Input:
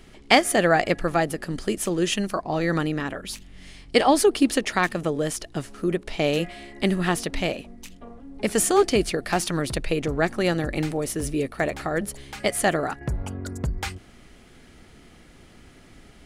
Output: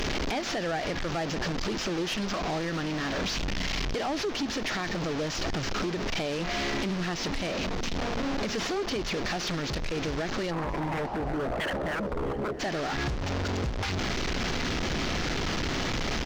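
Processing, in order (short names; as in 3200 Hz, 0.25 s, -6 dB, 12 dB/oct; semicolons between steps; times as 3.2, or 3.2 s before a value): delta modulation 32 kbps, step -22.5 dBFS; de-hum 117.8 Hz, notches 2; sample leveller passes 1; limiter -11 dBFS, peak gain reduction 8 dB; compressor 4:1, threshold -22 dBFS, peak gain reduction 7 dB; soft clip -22 dBFS, distortion -15 dB; 10.5–12.59 synth low-pass 1100 Hz -> 400 Hz, resonance Q 4.9; wavefolder -23 dBFS; feedback echo 0.657 s, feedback 56%, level -20 dB; gain -2.5 dB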